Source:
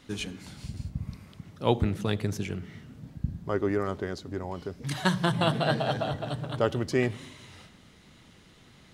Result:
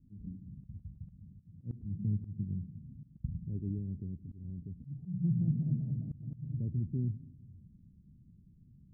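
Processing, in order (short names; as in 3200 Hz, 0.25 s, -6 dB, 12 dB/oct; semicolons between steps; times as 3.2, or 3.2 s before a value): inverse Chebyshev low-pass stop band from 1200 Hz, stop band 80 dB; auto swell 0.181 s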